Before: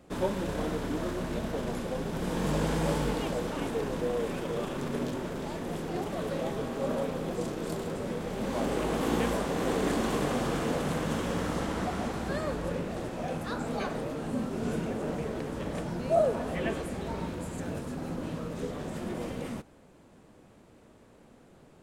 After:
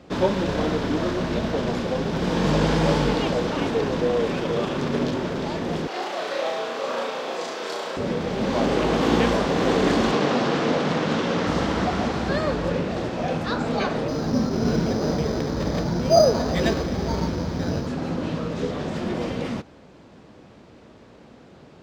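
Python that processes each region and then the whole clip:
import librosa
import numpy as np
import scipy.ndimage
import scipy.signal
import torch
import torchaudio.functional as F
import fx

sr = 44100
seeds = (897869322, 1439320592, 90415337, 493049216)

y = fx.chain(x, sr, fx.highpass(hz=660.0, slope=12),
    fx.room_flutter(wall_m=5.8, rt60_s=0.52), at=(5.87, 7.97))
y = fx.chain(y, sr, fx.bandpass_edges(low_hz=150.0, high_hz=7500.0),
    fx.doppler_dist(depth_ms=0.26), at=(10.11, 11.47))
y = fx.chain(y, sr, fx.resample_bad(factor=8, down='filtered', up='hold'),
    fx.low_shelf(hz=120.0, db=6.5), at=(14.08, 17.87))
y = scipy.signal.sosfilt(scipy.signal.butter(2, 48.0, 'highpass', fs=sr, output='sos'), y)
y = fx.high_shelf_res(y, sr, hz=7200.0, db=-13.0, q=1.5)
y = y * 10.0 ** (8.5 / 20.0)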